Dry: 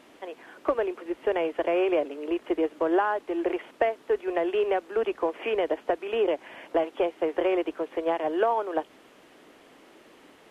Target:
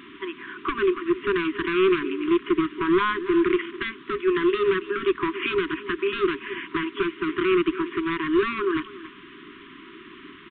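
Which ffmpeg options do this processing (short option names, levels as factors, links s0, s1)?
-filter_complex "[0:a]asplit=2[s0][s1];[s1]adelay=280,highpass=300,lowpass=3400,asoftclip=type=hard:threshold=0.0944,volume=0.141[s2];[s0][s2]amix=inputs=2:normalize=0,asplit=2[s3][s4];[s4]alimiter=limit=0.0841:level=0:latency=1,volume=1.26[s5];[s3][s5]amix=inputs=2:normalize=0,asoftclip=type=hard:threshold=0.106,aresample=8000,aresample=44100,afftfilt=real='re*(1-between(b*sr/4096,410,960))':imag='im*(1-between(b*sr/4096,410,960))':win_size=4096:overlap=0.75,volume=1.58"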